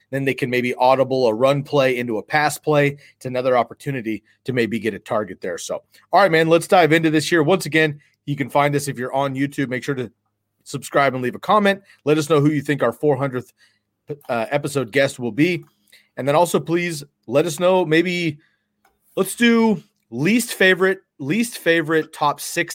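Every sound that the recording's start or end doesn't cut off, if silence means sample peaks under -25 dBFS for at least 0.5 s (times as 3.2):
10.7–13.41
14.1–15.57
16.18–18.31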